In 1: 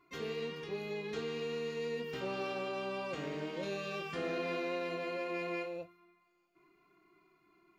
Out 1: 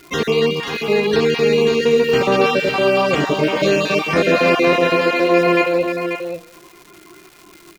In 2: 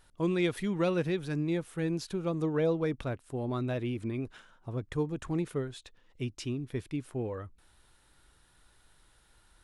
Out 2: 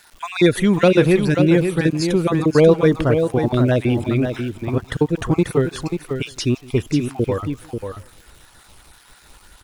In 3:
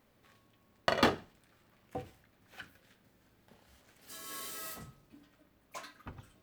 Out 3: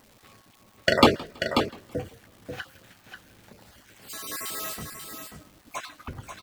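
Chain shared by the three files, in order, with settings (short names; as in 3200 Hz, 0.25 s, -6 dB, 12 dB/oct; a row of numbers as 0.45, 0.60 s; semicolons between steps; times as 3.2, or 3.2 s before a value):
random spectral dropouts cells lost 28%; on a send: echo 0.538 s -7 dB; on the sum: crackle 410/s -55 dBFS; warbling echo 0.164 s, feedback 32%, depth 117 cents, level -23 dB; normalise peaks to -2 dBFS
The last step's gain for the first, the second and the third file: +23.0, +16.0, +11.0 dB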